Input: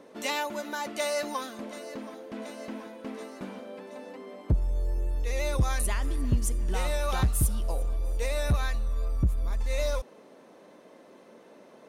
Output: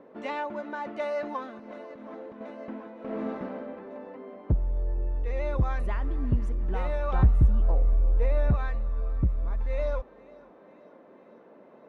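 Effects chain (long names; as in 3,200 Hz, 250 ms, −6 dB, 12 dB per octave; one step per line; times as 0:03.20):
low-pass filter 1,600 Hz 12 dB per octave
0:01.57–0:02.41: compressor whose output falls as the input rises −43 dBFS, ratio −1
0:07.14–0:08.51: spectral tilt −1.5 dB per octave
feedback echo with a high-pass in the loop 491 ms, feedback 68%, high-pass 420 Hz, level −20.5 dB
0:02.93–0:03.39: thrown reverb, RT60 2.7 s, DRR −7 dB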